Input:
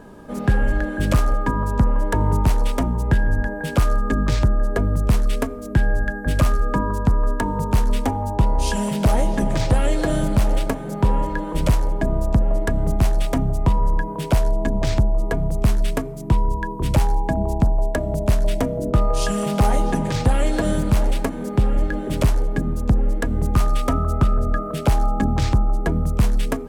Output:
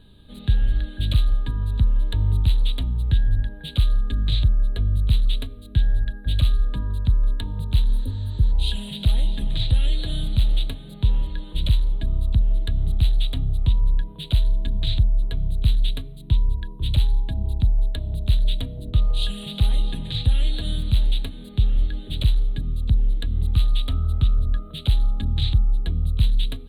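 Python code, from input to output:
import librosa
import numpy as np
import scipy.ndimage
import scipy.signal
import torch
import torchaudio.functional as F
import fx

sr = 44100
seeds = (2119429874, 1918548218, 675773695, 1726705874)

y = fx.high_shelf(x, sr, hz=7800.0, db=-7.0)
y = fx.spec_repair(y, sr, seeds[0], start_s=7.91, length_s=0.58, low_hz=620.0, high_hz=8500.0, source='before')
y = fx.curve_eq(y, sr, hz=(100.0, 160.0, 650.0, 990.0, 2200.0, 3900.0, 5500.0, 9300.0), db=(0, -10, -21, -22, -11, 13, -29, -5))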